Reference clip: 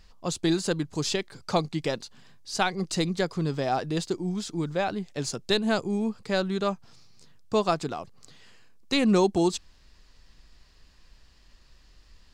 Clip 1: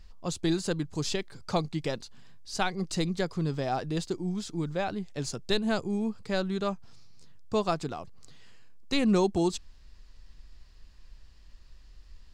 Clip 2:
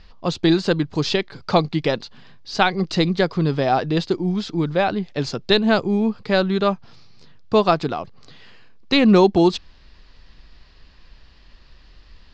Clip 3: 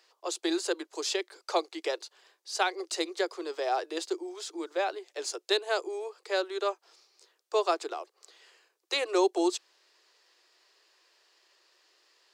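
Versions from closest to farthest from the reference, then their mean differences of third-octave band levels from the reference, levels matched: 1, 2, 3; 1.0 dB, 2.5 dB, 7.5 dB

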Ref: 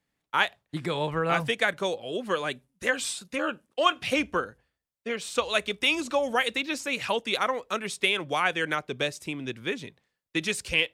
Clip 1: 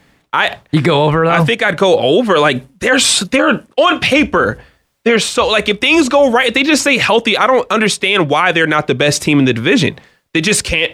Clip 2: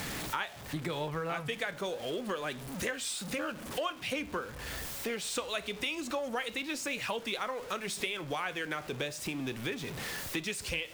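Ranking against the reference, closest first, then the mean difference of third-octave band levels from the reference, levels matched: 1, 2; 4.5 dB, 8.0 dB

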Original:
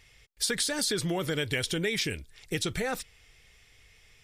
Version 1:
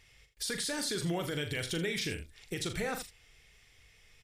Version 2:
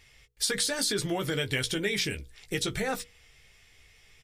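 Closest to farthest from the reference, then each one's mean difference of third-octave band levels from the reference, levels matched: 2, 1; 1.5 dB, 3.0 dB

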